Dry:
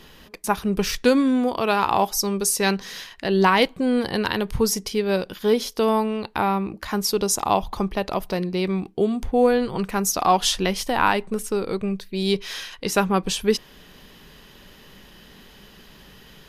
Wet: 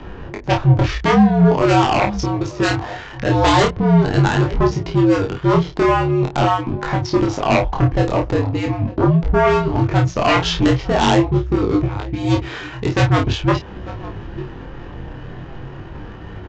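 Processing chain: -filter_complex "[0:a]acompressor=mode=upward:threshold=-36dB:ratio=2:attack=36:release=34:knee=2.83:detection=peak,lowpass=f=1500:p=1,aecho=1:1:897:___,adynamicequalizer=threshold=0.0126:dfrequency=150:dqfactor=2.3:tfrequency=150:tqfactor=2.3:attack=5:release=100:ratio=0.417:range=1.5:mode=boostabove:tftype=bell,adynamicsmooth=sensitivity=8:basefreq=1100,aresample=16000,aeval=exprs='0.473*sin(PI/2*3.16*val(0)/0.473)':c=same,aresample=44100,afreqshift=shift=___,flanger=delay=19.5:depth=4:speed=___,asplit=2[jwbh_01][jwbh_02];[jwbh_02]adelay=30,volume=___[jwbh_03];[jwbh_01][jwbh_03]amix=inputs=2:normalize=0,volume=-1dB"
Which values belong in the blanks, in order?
0.0891, -73, 0.43, -5dB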